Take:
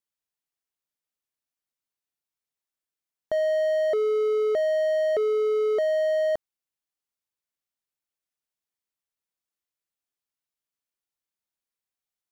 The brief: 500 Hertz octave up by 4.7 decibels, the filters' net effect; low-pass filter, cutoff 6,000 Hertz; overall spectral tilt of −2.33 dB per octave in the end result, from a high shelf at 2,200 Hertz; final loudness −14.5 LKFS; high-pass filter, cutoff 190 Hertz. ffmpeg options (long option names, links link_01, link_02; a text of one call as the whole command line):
ffmpeg -i in.wav -af "highpass=190,lowpass=6000,equalizer=frequency=500:width_type=o:gain=6,highshelf=frequency=2200:gain=4,volume=5dB" out.wav